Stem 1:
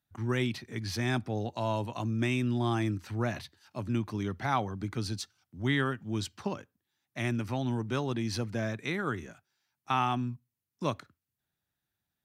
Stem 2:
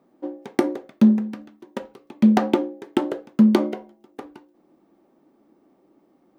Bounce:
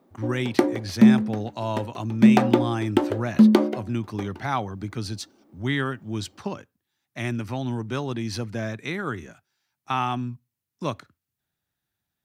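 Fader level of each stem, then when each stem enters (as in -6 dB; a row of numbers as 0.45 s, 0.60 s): +3.0 dB, +0.5 dB; 0.00 s, 0.00 s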